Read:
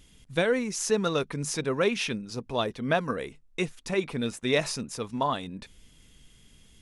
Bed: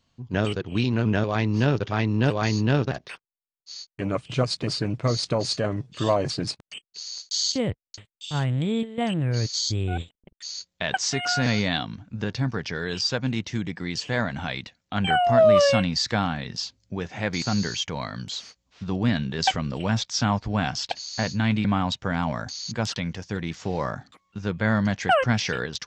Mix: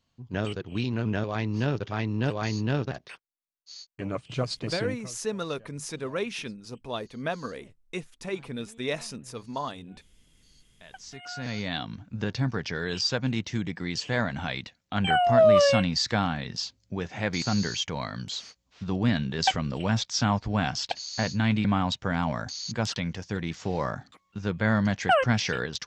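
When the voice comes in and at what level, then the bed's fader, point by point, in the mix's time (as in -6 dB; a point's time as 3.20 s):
4.35 s, -5.5 dB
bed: 4.89 s -5.5 dB
5.17 s -29.5 dB
10.50 s -29.5 dB
11.97 s -1.5 dB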